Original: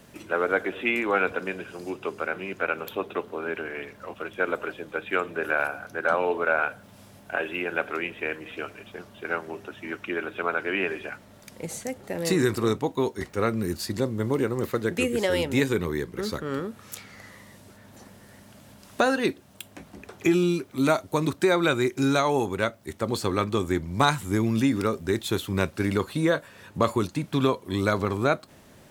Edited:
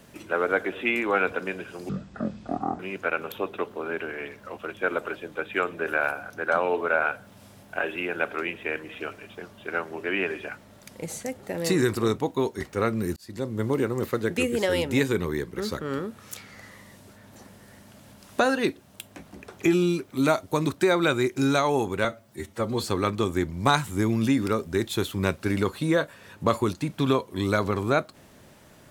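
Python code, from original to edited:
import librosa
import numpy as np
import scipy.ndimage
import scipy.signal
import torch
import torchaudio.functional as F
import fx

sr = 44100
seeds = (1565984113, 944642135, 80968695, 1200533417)

y = fx.edit(x, sr, fx.speed_span(start_s=1.89, length_s=0.47, speed=0.52),
    fx.cut(start_s=9.6, length_s=1.04),
    fx.fade_in_span(start_s=13.77, length_s=0.44),
    fx.stretch_span(start_s=22.65, length_s=0.53, factor=1.5), tone=tone)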